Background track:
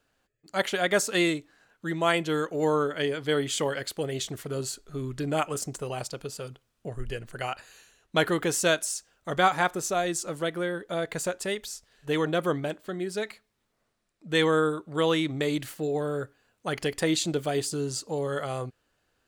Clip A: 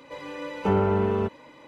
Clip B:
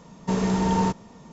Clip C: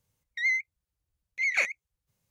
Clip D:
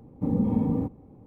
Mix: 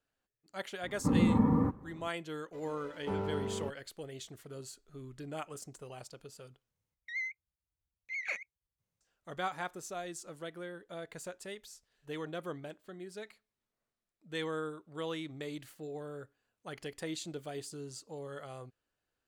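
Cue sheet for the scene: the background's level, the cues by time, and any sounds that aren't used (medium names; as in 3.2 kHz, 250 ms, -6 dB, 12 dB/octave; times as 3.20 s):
background track -14 dB
0.83 s: add D -2 dB + high-order bell 1.4 kHz +15 dB 1.2 oct
2.42 s: add A -13.5 dB + hysteresis with a dead band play -35 dBFS
6.71 s: replace with C -9.5 dB + treble shelf 4 kHz -7 dB
not used: B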